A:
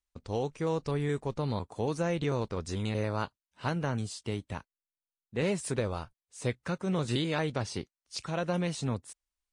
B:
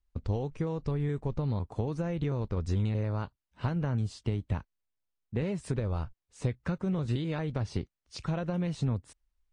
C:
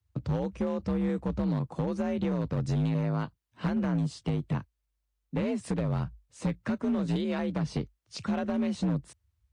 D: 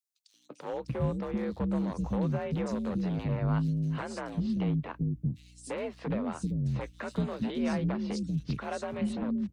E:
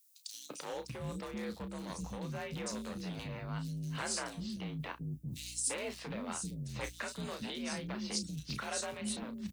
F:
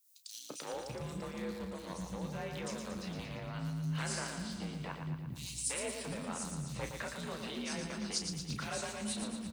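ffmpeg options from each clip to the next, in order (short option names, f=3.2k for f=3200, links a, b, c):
-af "acompressor=threshold=-35dB:ratio=6,aemphasis=mode=reproduction:type=bsi,volume=2dB"
-af "afreqshift=50,asoftclip=type=hard:threshold=-25.5dB,volume=2.5dB"
-filter_complex "[0:a]aeval=exprs='val(0)+0.002*(sin(2*PI*60*n/s)+sin(2*PI*2*60*n/s)/2+sin(2*PI*3*60*n/s)/3+sin(2*PI*4*60*n/s)/4+sin(2*PI*5*60*n/s)/5)':c=same,acrossover=split=320|4200[a][b][c];[b]adelay=340[d];[a]adelay=730[e];[e][d][c]amix=inputs=3:normalize=0"
-filter_complex "[0:a]areverse,acompressor=threshold=-41dB:ratio=5,areverse,crystalizer=i=9.5:c=0,asplit=2[a][b];[b]adelay=33,volume=-9dB[c];[a][c]amix=inputs=2:normalize=0"
-filter_complex "[0:a]acrossover=split=1400[a][b];[a]aeval=exprs='val(0)*(1-0.5/2+0.5/2*cos(2*PI*4.1*n/s))':c=same[c];[b]aeval=exprs='val(0)*(1-0.5/2-0.5/2*cos(2*PI*4.1*n/s))':c=same[d];[c][d]amix=inputs=2:normalize=0,asplit=2[e][f];[f]aecho=0:1:115|230|345|460|575|690|805|920:0.501|0.296|0.174|0.103|0.0607|0.0358|0.0211|0.0125[g];[e][g]amix=inputs=2:normalize=0,volume=1dB"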